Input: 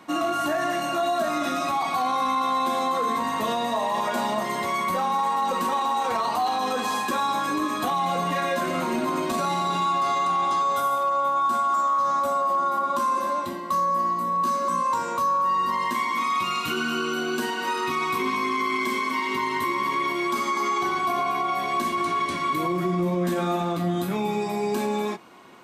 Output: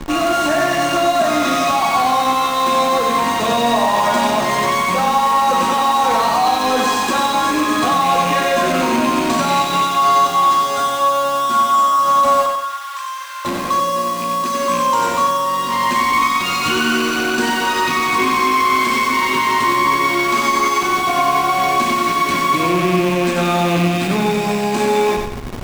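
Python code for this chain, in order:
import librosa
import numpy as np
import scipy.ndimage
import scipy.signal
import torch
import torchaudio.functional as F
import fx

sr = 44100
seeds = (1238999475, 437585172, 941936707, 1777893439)

p1 = fx.rattle_buzz(x, sr, strikes_db=-33.0, level_db=-26.0)
p2 = scipy.signal.sosfilt(scipy.signal.butter(4, 8300.0, 'lowpass', fs=sr, output='sos'), p1)
p3 = fx.high_shelf(p2, sr, hz=4900.0, db=4.5)
p4 = fx.schmitt(p3, sr, flips_db=-42.0)
p5 = p3 + (p4 * librosa.db_to_amplitude(-7.5))
p6 = fx.ladder_highpass(p5, sr, hz=1200.0, resonance_pct=35, at=(12.46, 13.45))
p7 = fx.echo_feedback(p6, sr, ms=93, feedback_pct=39, wet_db=-4.5)
y = p7 * librosa.db_to_amplitude(5.0)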